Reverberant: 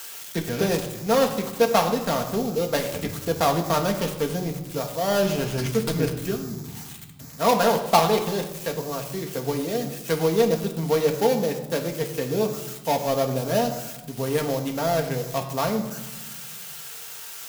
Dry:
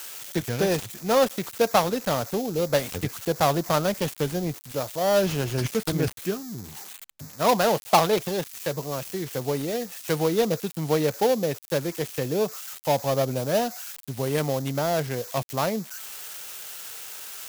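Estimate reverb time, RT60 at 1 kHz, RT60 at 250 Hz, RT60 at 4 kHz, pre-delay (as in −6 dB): 1.1 s, 1.1 s, 2.0 s, 0.75 s, 4 ms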